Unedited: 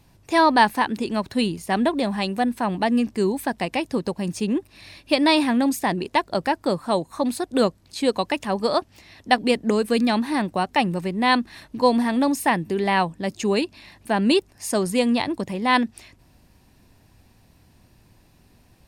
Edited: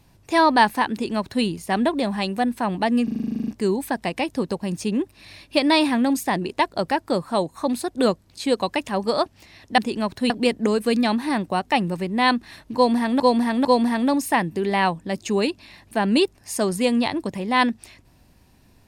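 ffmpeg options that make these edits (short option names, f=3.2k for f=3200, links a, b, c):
-filter_complex "[0:a]asplit=16[a][b][c][d][e][f][g][h][i][j][k][l][m][n][o][p];[a]atrim=end=3.082[q];[b]atrim=start=3.038:end=3.082[r];[c]atrim=start=3.038:end=3.082[s];[d]atrim=start=3.038:end=3.082[t];[e]atrim=start=3.038:end=3.082[u];[f]atrim=start=3.038:end=3.082[v];[g]atrim=start=3.038:end=3.082[w];[h]atrim=start=3.038:end=3.082[x];[i]atrim=start=3.038:end=3.082[y];[j]atrim=start=3.038:end=3.082[z];[k]atrim=start=3.038:end=3.082[aa];[l]atrim=start=3.038:end=9.342[ab];[m]atrim=start=0.918:end=1.442[ac];[n]atrim=start=9.338:end=12.242[ad];[o]atrim=start=11.788:end=12.242[ae];[p]atrim=start=11.788[af];[q][r]acrossfade=d=0.004:c1=hsin:c2=hsin[ag];[ag][s]acrossfade=d=0.004:c1=hsin:c2=hsin[ah];[ah][t]acrossfade=d=0.004:c1=hsin:c2=hsin[ai];[ai][u]acrossfade=d=0.004:c1=hsin:c2=hsin[aj];[aj][v]acrossfade=d=0.004:c1=hsin:c2=hsin[ak];[ak][w]acrossfade=d=0.004:c1=hsin:c2=hsin[al];[al][x]acrossfade=d=0.004:c1=hsin:c2=hsin[am];[am][y]acrossfade=d=0.004:c1=hsin:c2=hsin[an];[an][z]acrossfade=d=0.004:c1=hsin:c2=hsin[ao];[ao][aa]acrossfade=d=0.004:c1=hsin:c2=hsin[ap];[ap][ab]acrossfade=d=0.004:c1=hsin:c2=hsin[aq];[aq][ac]acrossfade=d=0.004:c1=hsin:c2=hsin[ar];[ar][ad]acrossfade=d=0.004:c1=hsin:c2=hsin[as];[as][ae]acrossfade=d=0.004:c1=hsin:c2=hsin[at];[at][af]acrossfade=d=0.004:c1=hsin:c2=hsin"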